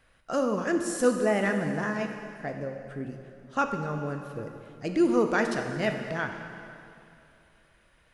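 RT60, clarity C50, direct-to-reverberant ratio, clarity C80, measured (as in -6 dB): 2.6 s, 6.0 dB, 4.5 dB, 7.0 dB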